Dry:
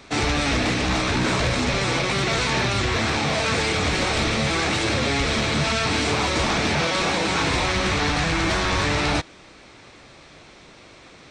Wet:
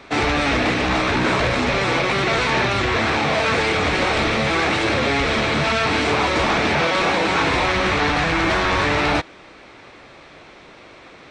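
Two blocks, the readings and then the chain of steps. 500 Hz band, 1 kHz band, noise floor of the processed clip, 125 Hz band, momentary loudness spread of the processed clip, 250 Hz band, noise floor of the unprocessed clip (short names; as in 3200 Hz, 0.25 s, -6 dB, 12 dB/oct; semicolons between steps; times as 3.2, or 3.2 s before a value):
+4.5 dB, +5.0 dB, -44 dBFS, -0.5 dB, 1 LU, +2.5 dB, -47 dBFS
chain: tone controls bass -6 dB, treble -11 dB; gain +5 dB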